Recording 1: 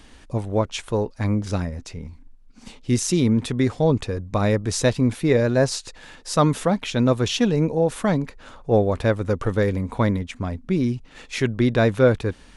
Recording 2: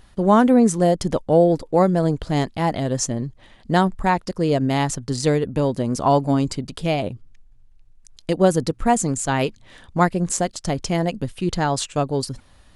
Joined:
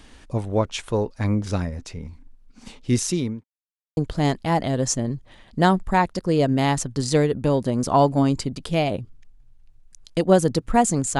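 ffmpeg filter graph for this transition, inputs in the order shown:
-filter_complex "[0:a]apad=whole_dur=11.19,atrim=end=11.19,asplit=2[a][b];[a]atrim=end=3.44,asetpts=PTS-STARTPTS,afade=t=out:st=3.01:d=0.43[c];[b]atrim=start=3.44:end=3.97,asetpts=PTS-STARTPTS,volume=0[d];[1:a]atrim=start=2.09:end=9.31,asetpts=PTS-STARTPTS,afade=t=in:d=0.004:c=hsin[e];[c][d][e]concat=n=3:v=0:a=1"

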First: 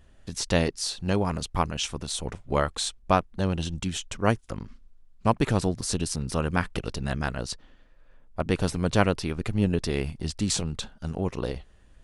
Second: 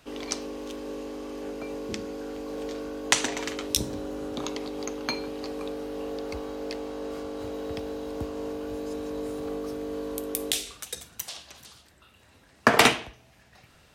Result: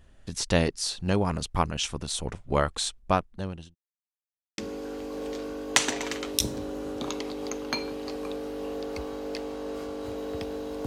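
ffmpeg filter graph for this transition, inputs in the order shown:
-filter_complex "[0:a]apad=whole_dur=10.86,atrim=end=10.86,asplit=2[a][b];[a]atrim=end=3.75,asetpts=PTS-STARTPTS,afade=t=out:st=2.64:d=1.11:c=qsin[c];[b]atrim=start=3.75:end=4.58,asetpts=PTS-STARTPTS,volume=0[d];[1:a]atrim=start=1.94:end=8.22,asetpts=PTS-STARTPTS,afade=t=in:d=0.004:c=hsin[e];[c][d][e]concat=n=3:v=0:a=1"

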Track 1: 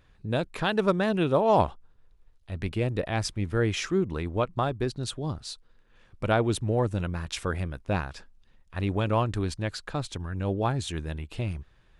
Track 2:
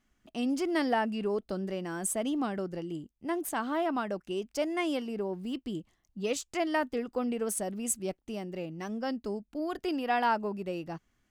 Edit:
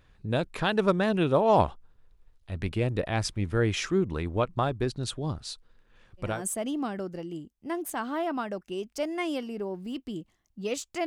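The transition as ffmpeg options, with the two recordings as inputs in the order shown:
-filter_complex "[0:a]apad=whole_dur=11.06,atrim=end=11.06,atrim=end=6.43,asetpts=PTS-STARTPTS[a];[1:a]atrim=start=1.76:end=6.65,asetpts=PTS-STARTPTS[b];[a][b]acrossfade=d=0.26:c1=tri:c2=tri"

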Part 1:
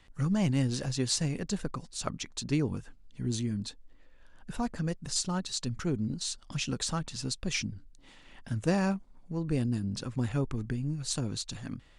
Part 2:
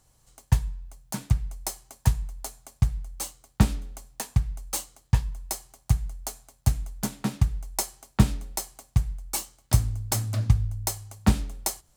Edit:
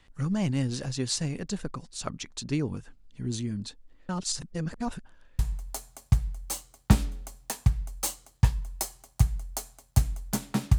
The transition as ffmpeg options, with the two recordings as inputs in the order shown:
-filter_complex "[0:a]apad=whole_dur=10.78,atrim=end=10.78,asplit=2[a][b];[a]atrim=end=4.092[c];[b]atrim=start=4.088:end=5.392,asetpts=PTS-STARTPTS,areverse[d];[1:a]atrim=start=2.088:end=7.48[e];[c][d]acrossfade=d=0.004:c1=hsin:c2=hsin[f];[f][e]acrossfade=d=0.004:c1=hsin:c2=hsin"

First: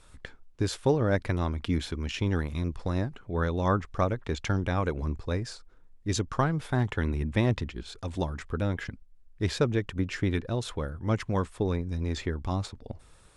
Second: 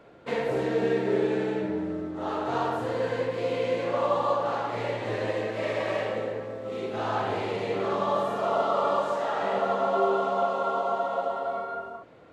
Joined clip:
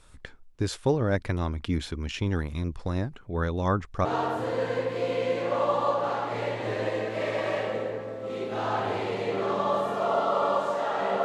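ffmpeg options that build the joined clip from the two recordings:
-filter_complex "[0:a]apad=whole_dur=11.24,atrim=end=11.24,atrim=end=4.052[a];[1:a]atrim=start=2.468:end=9.66[b];[a][b]acrossfade=d=0.004:c1=hsin:c2=hsin"

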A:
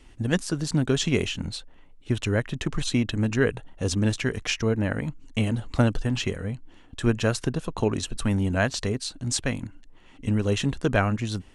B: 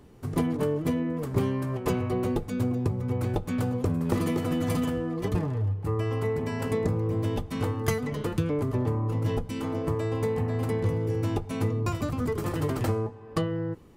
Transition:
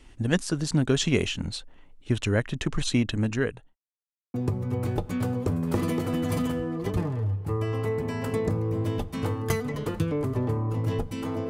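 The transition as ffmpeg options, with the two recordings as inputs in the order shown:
-filter_complex "[0:a]apad=whole_dur=11.49,atrim=end=11.49,asplit=2[a][b];[a]atrim=end=3.76,asetpts=PTS-STARTPTS,afade=t=out:st=2.94:d=0.82:c=qsin[c];[b]atrim=start=3.76:end=4.34,asetpts=PTS-STARTPTS,volume=0[d];[1:a]atrim=start=2.72:end=9.87,asetpts=PTS-STARTPTS,afade=t=in:d=0.004:c=hsin[e];[c][d][e]concat=n=3:v=0:a=1"

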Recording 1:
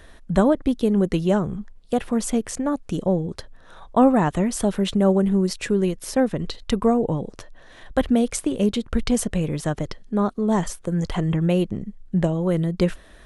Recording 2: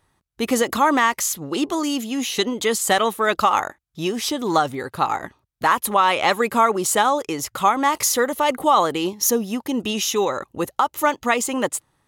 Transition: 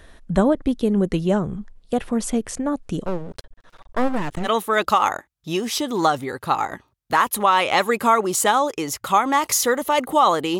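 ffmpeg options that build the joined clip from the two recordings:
-filter_complex "[0:a]asettb=1/sr,asplit=3[a][b][c];[a]atrim=end=3.054[d];[b]atrim=start=3.05:end=4.49,asetpts=PTS-STARTPTS,afade=t=in:d=0.004:c=qsin,afade=t=out:st=1.436:d=0.004:c=qsin,aeval=exprs='max(val(0),0)':c=same[e];[c]atrim=start=4.486[f];[d][e]acrossfade=d=0.004:c1=hsin:c2=qsin[g];[g][f]acrossfade=d=0.004:c1=qsin:c2=hsin,apad=whole_dur=10.59,atrim=end=10.59,atrim=end=4.49,asetpts=PTS-STARTPTS[h];[1:a]atrim=start=2.94:end=9.1,asetpts=PTS-STARTPTS[i];[h][i]acrossfade=d=0.06:c1=tri:c2=tri"

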